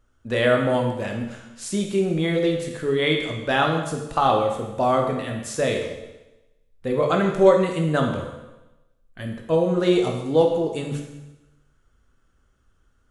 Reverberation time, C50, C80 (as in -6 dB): 1.0 s, 5.0 dB, 7.0 dB